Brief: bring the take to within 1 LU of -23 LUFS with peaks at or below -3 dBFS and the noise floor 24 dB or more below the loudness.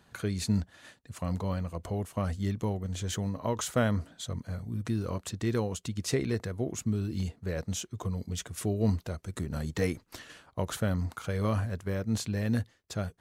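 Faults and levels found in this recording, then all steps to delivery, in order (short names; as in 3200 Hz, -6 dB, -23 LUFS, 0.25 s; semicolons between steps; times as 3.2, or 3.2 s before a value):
loudness -33.0 LUFS; peak -14.5 dBFS; loudness target -23.0 LUFS
-> gain +10 dB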